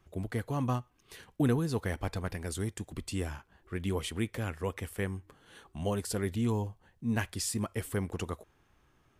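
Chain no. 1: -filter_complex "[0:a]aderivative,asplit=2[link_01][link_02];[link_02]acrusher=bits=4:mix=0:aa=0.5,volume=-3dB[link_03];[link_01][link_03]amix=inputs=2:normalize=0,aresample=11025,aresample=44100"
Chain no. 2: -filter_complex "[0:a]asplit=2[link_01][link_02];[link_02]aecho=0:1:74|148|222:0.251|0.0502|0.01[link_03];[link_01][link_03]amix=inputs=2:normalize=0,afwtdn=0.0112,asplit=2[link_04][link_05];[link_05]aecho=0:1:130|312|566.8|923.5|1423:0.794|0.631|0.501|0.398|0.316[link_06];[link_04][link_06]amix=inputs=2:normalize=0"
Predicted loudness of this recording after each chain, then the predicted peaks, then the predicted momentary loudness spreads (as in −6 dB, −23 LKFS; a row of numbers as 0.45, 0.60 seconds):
−51.5, −31.0 LKFS; −26.0, −15.0 dBFS; 13, 8 LU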